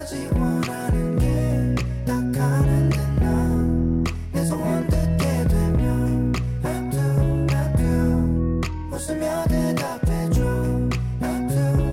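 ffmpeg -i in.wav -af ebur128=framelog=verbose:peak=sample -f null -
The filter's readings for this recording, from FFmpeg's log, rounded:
Integrated loudness:
  I:         -22.2 LUFS
  Threshold: -32.2 LUFS
Loudness range:
  LRA:         1.5 LU
  Threshold: -42.0 LUFS
  LRA low:   -22.9 LUFS
  LRA high:  -21.4 LUFS
Sample peak:
  Peak:      -11.4 dBFS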